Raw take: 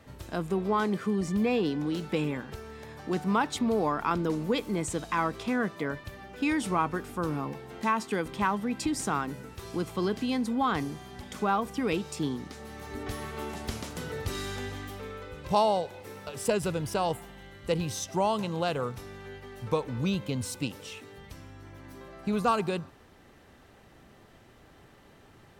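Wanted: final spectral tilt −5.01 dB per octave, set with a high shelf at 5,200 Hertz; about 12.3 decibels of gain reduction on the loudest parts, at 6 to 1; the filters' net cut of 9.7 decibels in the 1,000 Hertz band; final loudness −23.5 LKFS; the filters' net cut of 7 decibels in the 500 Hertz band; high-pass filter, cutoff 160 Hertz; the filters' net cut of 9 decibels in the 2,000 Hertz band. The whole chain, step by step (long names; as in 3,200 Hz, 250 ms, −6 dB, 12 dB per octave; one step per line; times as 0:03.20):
high-pass filter 160 Hz
parametric band 500 Hz −6.5 dB
parametric band 1,000 Hz −8 dB
parametric band 2,000 Hz −8 dB
high-shelf EQ 5,200 Hz −6.5 dB
downward compressor 6 to 1, threshold −41 dBFS
level +22 dB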